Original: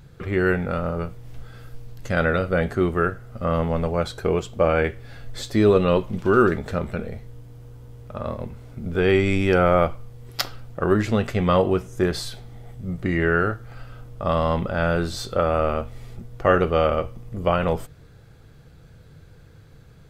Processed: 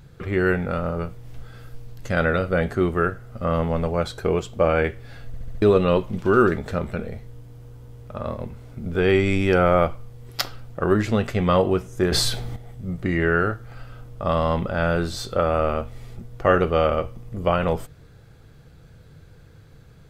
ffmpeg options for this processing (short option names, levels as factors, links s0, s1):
-filter_complex "[0:a]asplit=8[s0][s1][s2][s3][s4][s5][s6][s7];[s0]atrim=end=5.342[s8];[s1]atrim=start=5.268:end=5.342[s9];[s2]atrim=start=5.268:end=5.342[s10];[s3]atrim=start=5.268:end=5.342[s11];[s4]atrim=start=5.268:end=5.342[s12];[s5]atrim=start=5.618:end=12.122[s13];[s6]atrim=start=12.118:end=12.562,asetpts=PTS-STARTPTS,volume=3.16[s14];[s7]atrim=start=12.558[s15];[s8][s9]acrossfade=d=0.004:c1=hsin:c2=hsin[s16];[s16][s10]acrossfade=d=0.004:c1=hsin:c2=hsin[s17];[s17][s11]acrossfade=d=0.004:c1=hsin:c2=hsin[s18];[s18][s12]acrossfade=d=0.004:c1=hsin:c2=hsin[s19];[s19][s13]acrossfade=d=0.004:c1=hsin:c2=hsin[s20];[s20][s14]acrossfade=d=0.004:c1=hsin:c2=hsin[s21];[s21][s15]acrossfade=d=0.004:c1=hsin:c2=hsin"